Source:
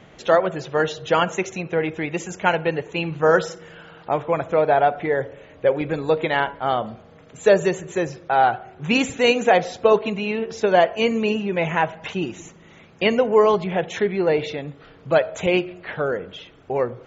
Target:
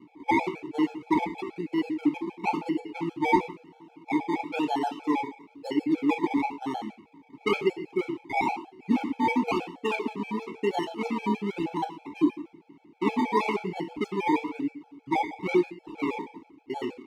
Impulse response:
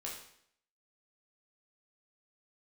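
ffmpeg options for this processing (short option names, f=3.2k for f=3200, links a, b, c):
-filter_complex "[0:a]equalizer=f=280:t=o:w=2.4:g=7,acrusher=samples=25:mix=1:aa=0.000001:lfo=1:lforange=15:lforate=1,asplit=3[a][b][c];[a]bandpass=f=300:t=q:w=8,volume=0dB[d];[b]bandpass=f=870:t=q:w=8,volume=-6dB[e];[c]bandpass=f=2.24k:t=q:w=8,volume=-9dB[f];[d][e][f]amix=inputs=3:normalize=0,asplit=2[g][h];[1:a]atrim=start_sample=2205,afade=t=out:st=0.2:d=0.01,atrim=end_sample=9261[i];[h][i]afir=irnorm=-1:irlink=0,volume=1.5dB[j];[g][j]amix=inputs=2:normalize=0,afftfilt=real='re*gt(sin(2*PI*6.3*pts/sr)*(1-2*mod(floor(b*sr/1024/440),2)),0)':imag='im*gt(sin(2*PI*6.3*pts/sr)*(1-2*mod(floor(b*sr/1024/440),2)),0)':win_size=1024:overlap=0.75"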